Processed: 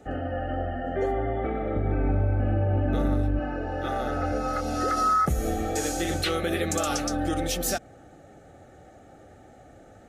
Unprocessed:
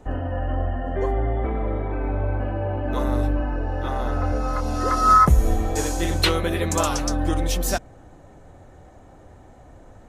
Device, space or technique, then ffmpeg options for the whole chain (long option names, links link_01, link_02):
PA system with an anti-feedback notch: -filter_complex "[0:a]asettb=1/sr,asplit=3[link_01][link_02][link_03];[link_01]atrim=end=1.764[link_04];[link_02]atrim=start=1.76:end=3.39,asetpts=PTS-STARTPTS,afade=type=in:duration=0.004:curve=qsin,afade=type=out:start_time=1.626:duration=0.004:curve=qsin,bass=frequency=250:gain=12,treble=frequency=4000:gain=-5[link_05];[link_03]atrim=start=3.386[link_06];[link_04][link_05]acrossfade=duration=0.004:curve1=hsin:curve2=qsin[link_07];[link_07][link_06]acrossfade=duration=0.004:curve1=qsin:curve2=hsin,highpass=frequency=160:poles=1,asuperstop=centerf=1000:order=8:qfactor=4.2,alimiter=limit=-16.5dB:level=0:latency=1:release=68"